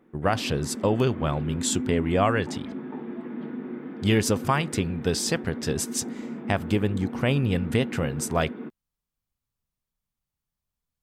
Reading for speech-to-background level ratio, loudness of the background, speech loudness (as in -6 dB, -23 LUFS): 9.5 dB, -35.5 LUFS, -26.0 LUFS